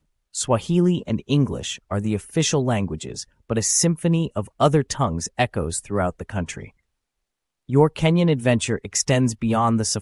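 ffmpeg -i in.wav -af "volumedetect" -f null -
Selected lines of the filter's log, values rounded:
mean_volume: -22.0 dB
max_volume: -3.1 dB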